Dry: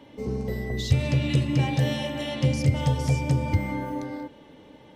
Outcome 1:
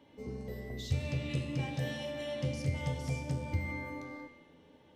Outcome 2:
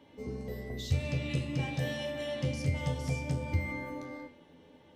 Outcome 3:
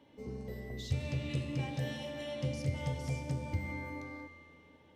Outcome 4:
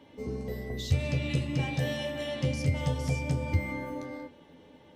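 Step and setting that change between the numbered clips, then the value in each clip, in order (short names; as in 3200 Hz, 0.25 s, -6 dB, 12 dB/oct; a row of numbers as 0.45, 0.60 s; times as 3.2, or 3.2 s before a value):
resonator, decay: 0.98, 0.4, 2.1, 0.16 s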